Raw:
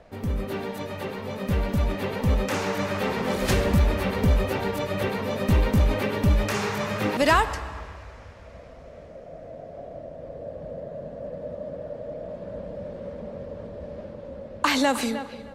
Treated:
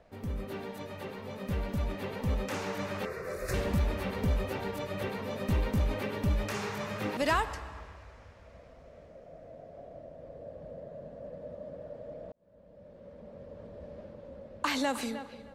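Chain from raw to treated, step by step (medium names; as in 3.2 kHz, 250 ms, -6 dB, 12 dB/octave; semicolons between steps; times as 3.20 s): 3.05–3.54 s: static phaser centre 860 Hz, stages 6; 12.32–13.78 s: fade in; trim -8.5 dB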